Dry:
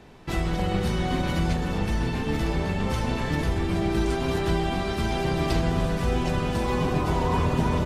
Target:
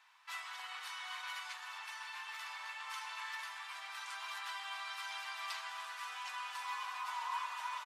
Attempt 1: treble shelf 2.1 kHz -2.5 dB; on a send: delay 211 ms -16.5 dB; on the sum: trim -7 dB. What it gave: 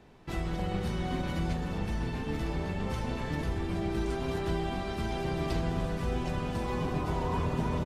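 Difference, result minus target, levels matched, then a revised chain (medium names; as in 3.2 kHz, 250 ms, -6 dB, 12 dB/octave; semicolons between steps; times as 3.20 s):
1 kHz band -5.5 dB
elliptic high-pass 1 kHz, stop band 80 dB; treble shelf 2.1 kHz -2.5 dB; on a send: delay 211 ms -16.5 dB; on the sum: trim -7 dB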